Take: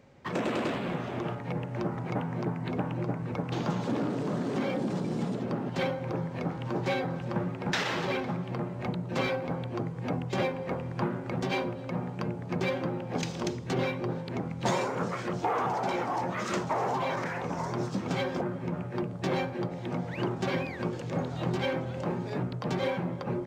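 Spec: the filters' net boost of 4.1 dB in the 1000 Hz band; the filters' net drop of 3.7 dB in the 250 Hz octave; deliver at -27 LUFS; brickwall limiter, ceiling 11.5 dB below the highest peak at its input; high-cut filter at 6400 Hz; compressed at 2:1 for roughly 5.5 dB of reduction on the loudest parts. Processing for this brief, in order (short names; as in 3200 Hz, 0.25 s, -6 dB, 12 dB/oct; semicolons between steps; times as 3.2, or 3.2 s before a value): LPF 6400 Hz; bell 250 Hz -6 dB; bell 1000 Hz +5.5 dB; compressor 2:1, threshold -32 dBFS; gain +10.5 dB; limiter -17.5 dBFS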